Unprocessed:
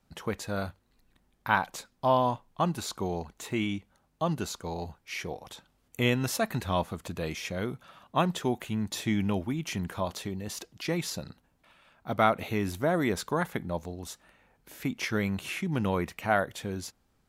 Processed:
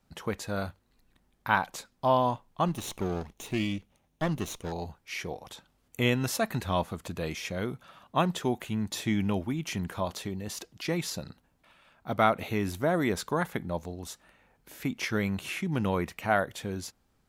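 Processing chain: 2.68–4.72 minimum comb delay 0.31 ms

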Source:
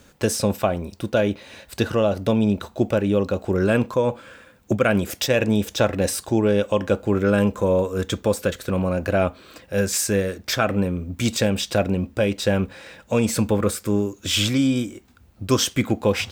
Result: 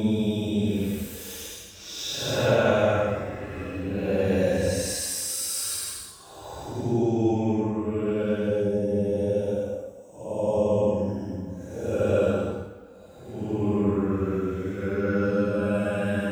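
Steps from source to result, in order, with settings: spectral gain 6.49–6.91, 980–5100 Hz -14 dB; Paulstretch 8.7×, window 0.10 s, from 5.52; vocal rider within 5 dB 2 s; gain -6 dB

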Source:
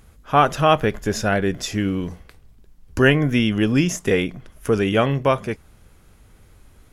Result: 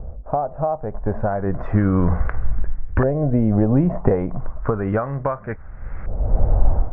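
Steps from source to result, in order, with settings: LFO low-pass saw up 0.33 Hz 580–2000 Hz; band shelf 1100 Hz +12 dB 2.4 oct; AGC gain up to 14.5 dB; gate with hold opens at -43 dBFS; compressor 5:1, threshold -24 dBFS, peak gain reduction 16 dB; tilt -4.5 dB/oct; gain +1 dB

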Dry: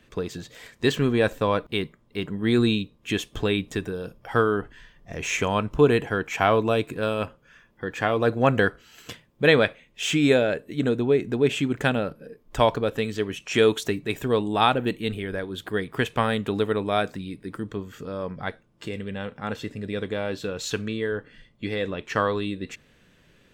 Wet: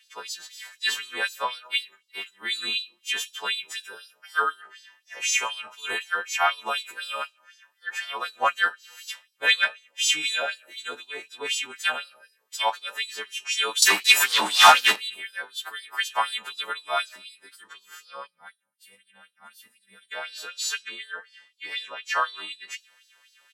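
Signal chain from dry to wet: frequency quantiser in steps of 2 st; 13.82–14.96 sample leveller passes 5; 18.27–20.12 spectral gain 260–8300 Hz -17 dB; on a send at -18 dB: reverb RT60 0.65 s, pre-delay 6 ms; on the sum: flange 0.61 Hz, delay 3.9 ms, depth 4.7 ms, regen +78%; dynamic EQ 140 Hz, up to +5 dB, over -35 dBFS, Q 0.76; LFO high-pass sine 4 Hz 810–4800 Hz; downsampling 32000 Hz; in parallel at -6.5 dB: soft clip -11.5 dBFS, distortion -10 dB; on the sum: gain -3.5 dB

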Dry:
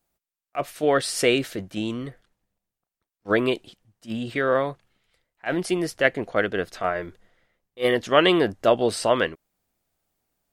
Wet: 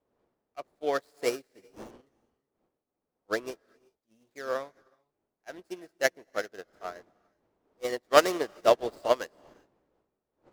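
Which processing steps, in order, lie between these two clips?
median filter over 15 samples; wind noise 390 Hz -36 dBFS; tone controls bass -13 dB, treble +8 dB; non-linear reverb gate 0.42 s rising, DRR 11 dB; upward expander 2.5:1, over -37 dBFS; gain +1.5 dB

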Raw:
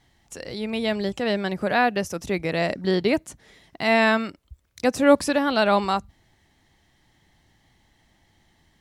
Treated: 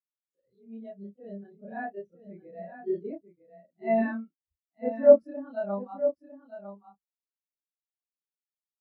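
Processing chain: short-time reversal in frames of 80 ms; echo 0.953 s -4.5 dB; spectral expander 2.5:1

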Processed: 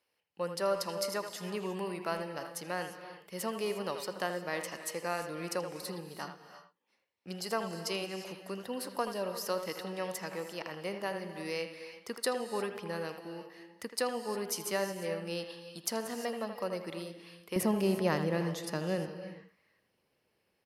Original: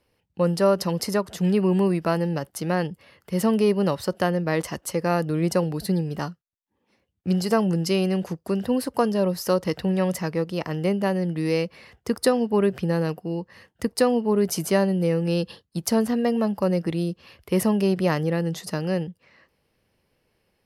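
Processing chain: HPF 940 Hz 6 dB/oct, from 17.56 s 180 Hz; speakerphone echo 80 ms, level -8 dB; non-linear reverb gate 0.38 s rising, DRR 10 dB; gain -6.5 dB

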